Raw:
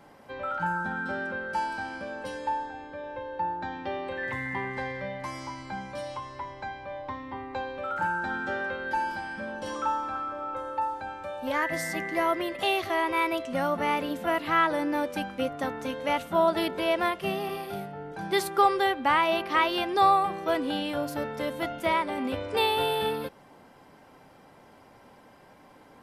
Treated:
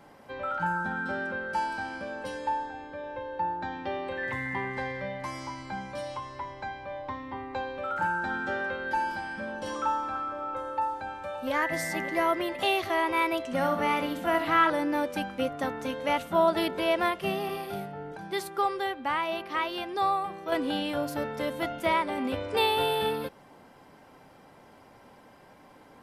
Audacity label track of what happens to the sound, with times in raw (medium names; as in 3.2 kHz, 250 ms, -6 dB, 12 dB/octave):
10.570000	11.520000	echo throw 570 ms, feedback 70%, level -12 dB
13.400000	14.700000	flutter echo walls apart 11 m, dies away in 0.47 s
18.170000	20.520000	gain -6 dB